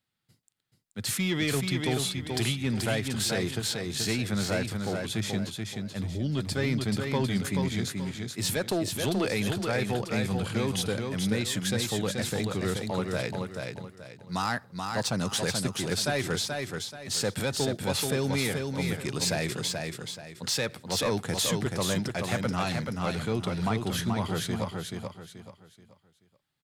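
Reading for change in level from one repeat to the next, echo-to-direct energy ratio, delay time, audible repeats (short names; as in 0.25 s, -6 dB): -10.0 dB, -4.0 dB, 0.431 s, 4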